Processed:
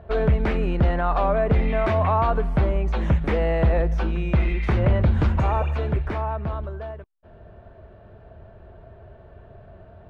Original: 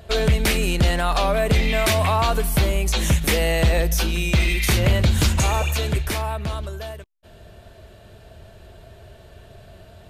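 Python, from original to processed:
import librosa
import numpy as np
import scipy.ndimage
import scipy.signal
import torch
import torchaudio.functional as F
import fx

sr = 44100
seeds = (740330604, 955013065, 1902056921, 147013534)

y = scipy.signal.sosfilt(scipy.signal.cheby1(2, 1.0, 1200.0, 'lowpass', fs=sr, output='sos'), x)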